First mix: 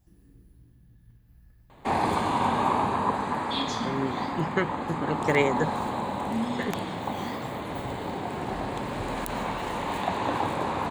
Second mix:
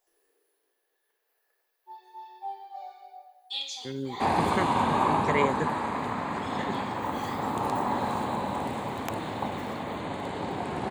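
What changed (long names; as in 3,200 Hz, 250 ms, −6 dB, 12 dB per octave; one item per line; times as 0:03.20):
speech −4.0 dB
first sound: add Chebyshev high-pass filter 410 Hz, order 5
second sound: entry +2.35 s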